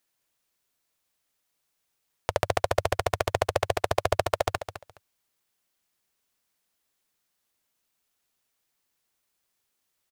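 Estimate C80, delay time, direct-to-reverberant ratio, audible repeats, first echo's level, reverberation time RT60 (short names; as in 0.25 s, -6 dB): none, 0.209 s, none, 2, -11.0 dB, none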